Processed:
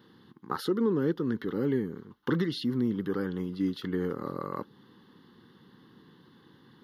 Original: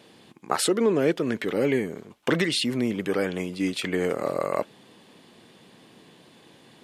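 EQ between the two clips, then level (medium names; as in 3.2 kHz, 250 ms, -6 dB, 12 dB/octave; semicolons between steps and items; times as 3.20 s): peaking EQ 6.6 kHz -12 dB 2.2 oct; dynamic bell 2 kHz, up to -6 dB, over -43 dBFS, Q 0.9; static phaser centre 2.4 kHz, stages 6; 0.0 dB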